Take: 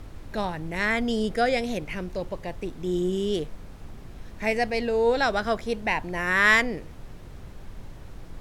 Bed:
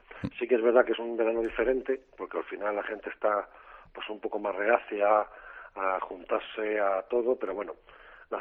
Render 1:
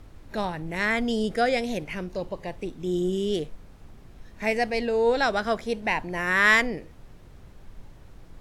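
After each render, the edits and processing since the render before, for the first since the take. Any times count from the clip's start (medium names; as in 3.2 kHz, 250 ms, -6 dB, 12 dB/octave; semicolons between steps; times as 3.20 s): noise print and reduce 6 dB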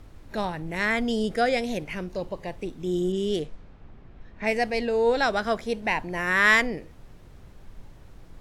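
3.12–4.91 s: level-controlled noise filter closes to 2.3 kHz, open at -22 dBFS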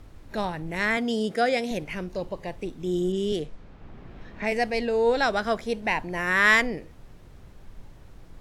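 0.97–1.71 s: high-pass 150 Hz; 3.32–4.52 s: three bands compressed up and down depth 40%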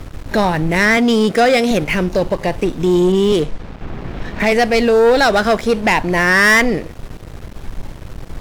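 in parallel at +1 dB: compression, threshold -31 dBFS, peak gain reduction 16 dB; on the sum: waveshaping leveller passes 3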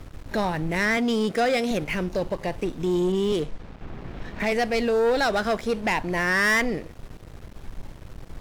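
trim -10 dB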